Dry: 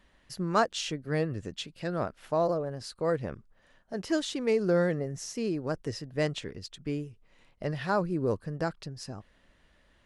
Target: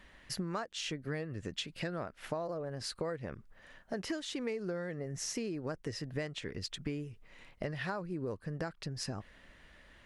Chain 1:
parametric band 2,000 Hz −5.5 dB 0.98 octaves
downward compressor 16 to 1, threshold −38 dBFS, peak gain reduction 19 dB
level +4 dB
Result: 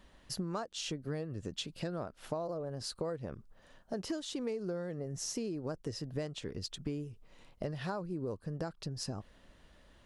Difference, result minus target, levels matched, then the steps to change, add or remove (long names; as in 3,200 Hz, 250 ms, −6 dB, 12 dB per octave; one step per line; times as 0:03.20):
2,000 Hz band −6.5 dB
change: parametric band 2,000 Hz +5 dB 0.98 octaves